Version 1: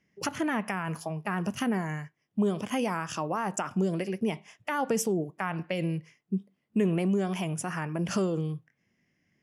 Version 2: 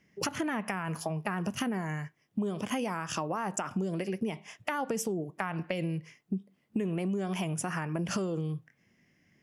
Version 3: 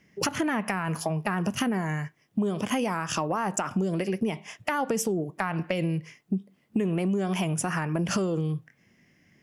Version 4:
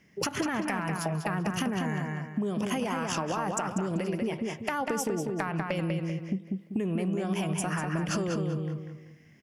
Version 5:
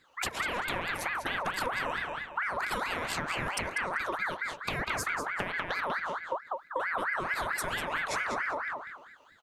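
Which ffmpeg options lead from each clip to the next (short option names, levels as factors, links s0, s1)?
-af "acompressor=threshold=0.0178:ratio=6,volume=1.88"
-af "asoftclip=type=tanh:threshold=0.141,volume=1.88"
-filter_complex "[0:a]asplit=2[s0][s1];[s1]adelay=194,lowpass=f=4300:p=1,volume=0.631,asplit=2[s2][s3];[s3]adelay=194,lowpass=f=4300:p=1,volume=0.34,asplit=2[s4][s5];[s5]adelay=194,lowpass=f=4300:p=1,volume=0.34,asplit=2[s6][s7];[s7]adelay=194,lowpass=f=4300:p=1,volume=0.34[s8];[s0][s2][s4][s6][s8]amix=inputs=5:normalize=0,acompressor=threshold=0.0398:ratio=2.5"
-af "aeval=exprs='val(0)*sin(2*PI*1300*n/s+1300*0.45/4.5*sin(2*PI*4.5*n/s))':c=same"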